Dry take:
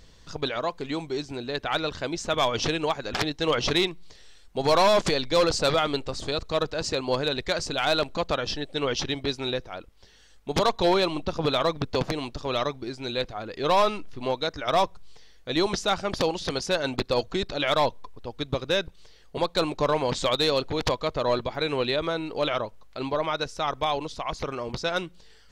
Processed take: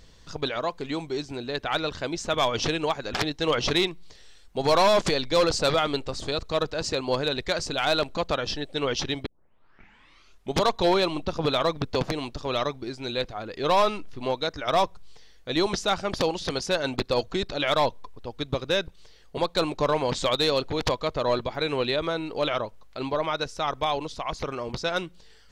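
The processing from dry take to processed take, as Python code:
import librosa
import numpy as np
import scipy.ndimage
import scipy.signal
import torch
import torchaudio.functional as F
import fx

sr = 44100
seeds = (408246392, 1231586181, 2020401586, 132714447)

y = fx.edit(x, sr, fx.tape_start(start_s=9.26, length_s=1.32), tone=tone)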